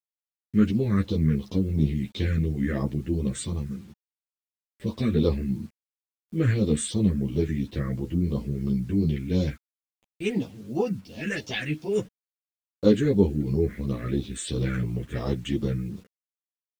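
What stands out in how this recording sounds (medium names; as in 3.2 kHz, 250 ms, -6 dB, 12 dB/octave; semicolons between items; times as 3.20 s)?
phasing stages 4, 2.9 Hz, lowest notch 790–1700 Hz; a quantiser's noise floor 10-bit, dither none; a shimmering, thickened sound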